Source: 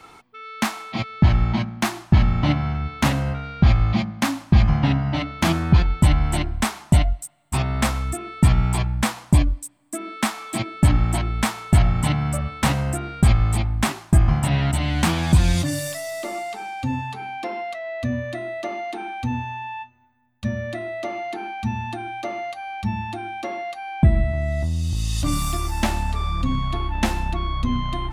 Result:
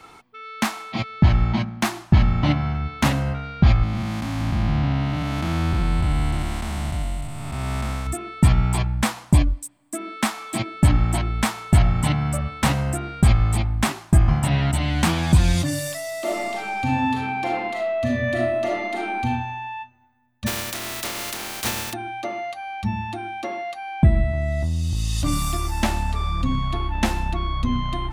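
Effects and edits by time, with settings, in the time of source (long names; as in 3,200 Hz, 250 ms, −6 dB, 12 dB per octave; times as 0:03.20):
0:03.83–0:08.07: spectrum smeared in time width 475 ms
0:16.19–0:19.23: thrown reverb, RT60 1 s, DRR −3.5 dB
0:20.46–0:21.92: compressing power law on the bin magnitudes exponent 0.2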